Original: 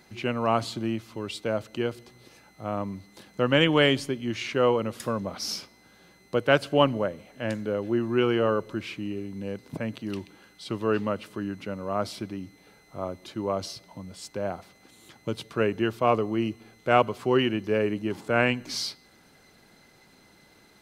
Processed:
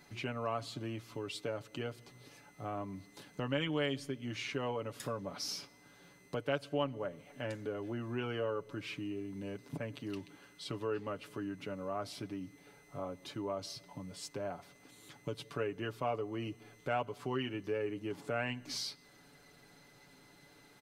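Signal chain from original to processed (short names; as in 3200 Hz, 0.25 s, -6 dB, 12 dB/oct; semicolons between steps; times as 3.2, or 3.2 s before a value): comb 7 ms, depth 64%; compressor 2:1, threshold -35 dBFS, peak gain reduction 13.5 dB; gain -5 dB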